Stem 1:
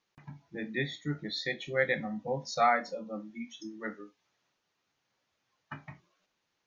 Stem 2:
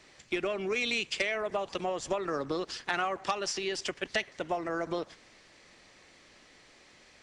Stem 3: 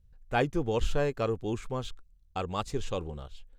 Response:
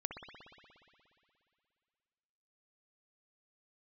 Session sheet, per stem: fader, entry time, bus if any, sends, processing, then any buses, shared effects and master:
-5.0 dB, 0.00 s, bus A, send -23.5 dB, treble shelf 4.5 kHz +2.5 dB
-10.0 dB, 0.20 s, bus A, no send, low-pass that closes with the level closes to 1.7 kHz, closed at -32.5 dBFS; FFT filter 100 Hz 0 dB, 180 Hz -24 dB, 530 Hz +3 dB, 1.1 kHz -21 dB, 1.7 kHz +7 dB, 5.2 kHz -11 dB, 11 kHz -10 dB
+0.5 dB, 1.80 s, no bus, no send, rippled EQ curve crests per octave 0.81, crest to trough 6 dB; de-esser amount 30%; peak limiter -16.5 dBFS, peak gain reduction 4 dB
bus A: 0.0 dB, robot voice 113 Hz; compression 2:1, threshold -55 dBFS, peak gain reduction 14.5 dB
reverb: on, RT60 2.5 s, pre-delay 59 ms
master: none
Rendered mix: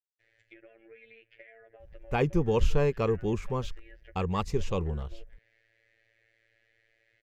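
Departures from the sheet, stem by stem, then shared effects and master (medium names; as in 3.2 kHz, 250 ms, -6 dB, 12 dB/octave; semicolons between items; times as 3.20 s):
stem 1: muted; reverb: off; master: extra tone controls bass +6 dB, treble -3 dB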